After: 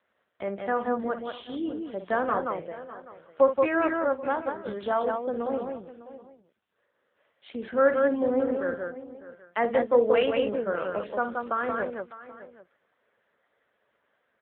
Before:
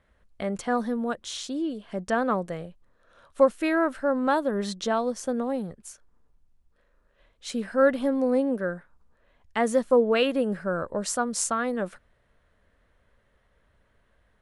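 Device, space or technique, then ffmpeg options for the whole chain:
satellite phone: -filter_complex "[0:a]aecho=1:1:55.39|177.8:0.316|0.631,asplit=3[a][b][c];[a]afade=t=out:st=4.12:d=0.02[d];[b]agate=range=-33dB:threshold=-15dB:ratio=3:detection=peak,afade=t=in:st=4.12:d=0.02,afade=t=out:st=4.65:d=0.02[e];[c]afade=t=in:st=4.65:d=0.02[f];[d][e][f]amix=inputs=3:normalize=0,highpass=320,lowpass=3.3k,aecho=1:1:603:0.158" -ar 8000 -c:a libopencore_amrnb -b:a 6700

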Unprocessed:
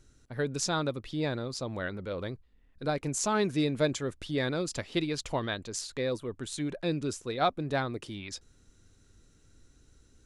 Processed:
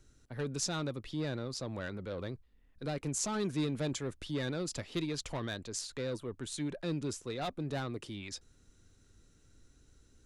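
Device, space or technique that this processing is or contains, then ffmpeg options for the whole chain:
one-band saturation: -filter_complex "[0:a]acrossover=split=260|4000[a][b][c];[b]asoftclip=type=tanh:threshold=-32dB[d];[a][d][c]amix=inputs=3:normalize=0,volume=-2.5dB"

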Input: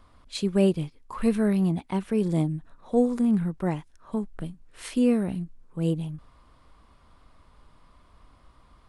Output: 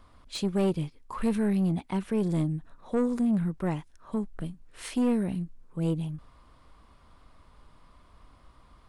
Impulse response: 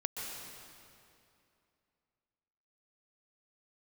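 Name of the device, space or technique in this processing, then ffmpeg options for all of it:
saturation between pre-emphasis and de-emphasis: -af "highshelf=f=3.1k:g=11,asoftclip=type=tanh:threshold=-20dB,highshelf=f=3.1k:g=-11"

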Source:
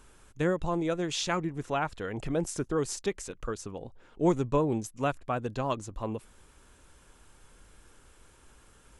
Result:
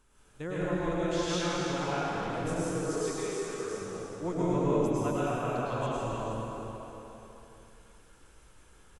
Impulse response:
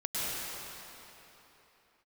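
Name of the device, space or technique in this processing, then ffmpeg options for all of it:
cave: -filter_complex "[0:a]asettb=1/sr,asplit=3[a][b][c];[a]atrim=end=2.694[d];[b]atrim=start=2.69:end=3.57,asetpts=PTS-STARTPTS,afade=t=in:d=0.004:c=qsin,afade=t=out:st=0.876:d=0.004:c=qsin,highpass=f=260:w=0.5412,highpass=f=260:w=1.3066[e];[c]atrim=start=3.566[f];[d][e]acrossfade=d=0.004:c1=hsin:c2=qsin[g];[g][f]acrossfade=d=0.004:c1=qsin:c2=hsin,aecho=1:1:315:0.335[h];[1:a]atrim=start_sample=2205[i];[h][i]afir=irnorm=-1:irlink=0,volume=-8.5dB"

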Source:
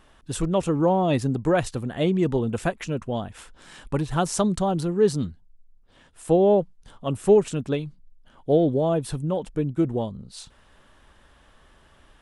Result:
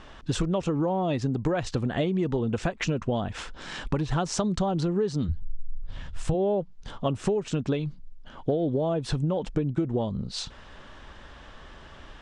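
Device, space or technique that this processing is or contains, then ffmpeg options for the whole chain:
serial compression, leveller first: -filter_complex "[0:a]asplit=3[a][b][c];[a]afade=t=out:st=5.28:d=0.02[d];[b]asubboost=boost=9:cutoff=110,afade=t=in:st=5.28:d=0.02,afade=t=out:st=6.33:d=0.02[e];[c]afade=t=in:st=6.33:d=0.02[f];[d][e][f]amix=inputs=3:normalize=0,acompressor=threshold=-25dB:ratio=2.5,acompressor=threshold=-32dB:ratio=6,lowpass=f=6.5k:w=0.5412,lowpass=f=6.5k:w=1.3066,volume=9dB"

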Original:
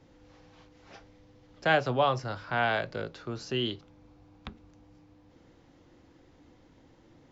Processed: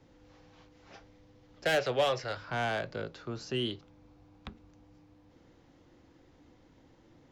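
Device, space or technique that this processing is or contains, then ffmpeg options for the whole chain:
one-band saturation: -filter_complex "[0:a]asettb=1/sr,asplit=3[a][b][c];[a]atrim=end=1.654[d];[b]atrim=start=1.65:end=2.37,asetpts=PTS-STARTPTS,afade=t=in:d=0.004:c=qsin,afade=t=out:st=0.716:d=0.004:c=qsin,equalizer=f=125:t=o:w=1:g=-5,equalizer=f=250:t=o:w=1:g=-8,equalizer=f=500:t=o:w=1:g=7,equalizer=f=1k:t=o:w=1:g=-4,equalizer=f=2k:t=o:w=1:g=10,equalizer=f=4k:t=o:w=1:g=6[e];[c]atrim=start=2.366[f];[d][e]acrossfade=d=0.004:c1=hsin:c2=qsin[g];[g][f]acrossfade=d=0.004:c1=qsin:c2=hsin,acrossover=split=520|4000[h][i][j];[i]asoftclip=type=tanh:threshold=-26.5dB[k];[h][k][j]amix=inputs=3:normalize=0,volume=-2dB"

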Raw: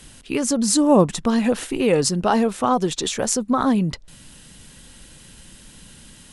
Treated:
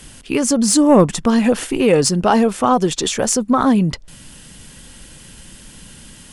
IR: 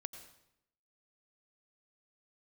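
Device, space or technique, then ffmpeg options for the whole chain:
saturation between pre-emphasis and de-emphasis: -af "highshelf=f=5.5k:g=10,bandreject=f=3.9k:w=14,asoftclip=type=tanh:threshold=-5dB,highshelf=f=5.5k:g=-10,volume=5dB"

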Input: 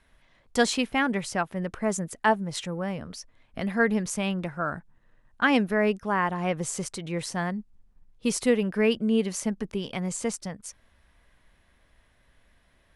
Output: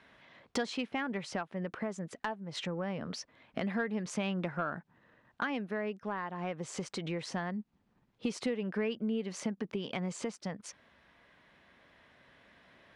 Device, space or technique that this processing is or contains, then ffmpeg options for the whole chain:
AM radio: -af "highpass=160,lowpass=4.2k,acompressor=threshold=-37dB:ratio=8,asoftclip=type=tanh:threshold=-26dB,tremolo=f=0.23:d=0.3,volume=6.5dB"

